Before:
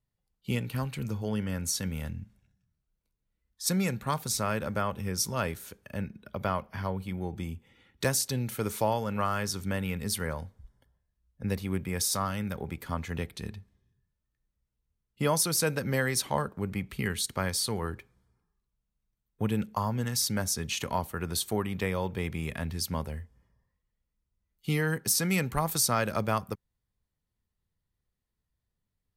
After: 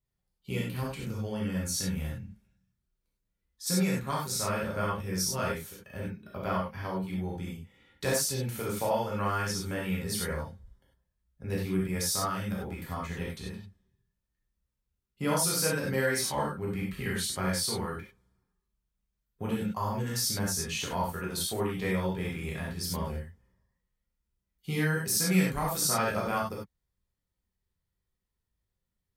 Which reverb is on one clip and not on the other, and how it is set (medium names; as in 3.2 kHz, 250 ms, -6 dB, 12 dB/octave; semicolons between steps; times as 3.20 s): gated-style reverb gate 120 ms flat, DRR -5 dB; trim -6.5 dB